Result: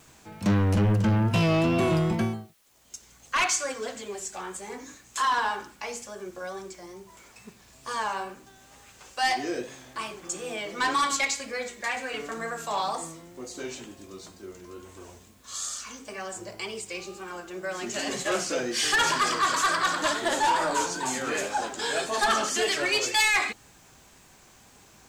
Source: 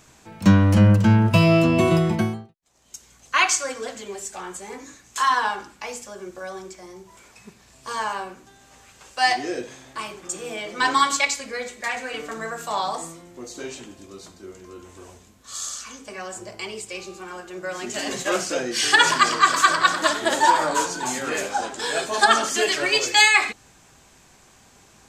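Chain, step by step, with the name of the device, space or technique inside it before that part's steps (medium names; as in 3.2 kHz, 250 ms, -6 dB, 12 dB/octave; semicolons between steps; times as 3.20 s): compact cassette (saturation -16.5 dBFS, distortion -9 dB; low-pass 13 kHz; wow and flutter; white noise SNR 36 dB); trim -2 dB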